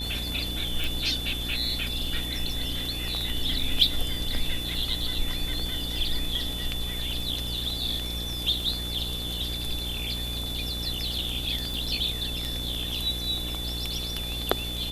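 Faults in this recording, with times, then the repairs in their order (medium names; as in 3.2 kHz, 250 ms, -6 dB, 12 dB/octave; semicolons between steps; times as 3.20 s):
buzz 60 Hz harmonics 14 -35 dBFS
crackle 21 per s -32 dBFS
whine 3.5 kHz -33 dBFS
0.84 s: pop
11.74 s: pop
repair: de-click; de-hum 60 Hz, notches 14; band-stop 3.5 kHz, Q 30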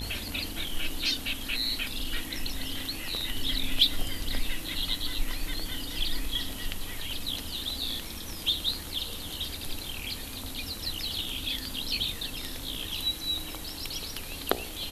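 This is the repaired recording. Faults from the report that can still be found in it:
nothing left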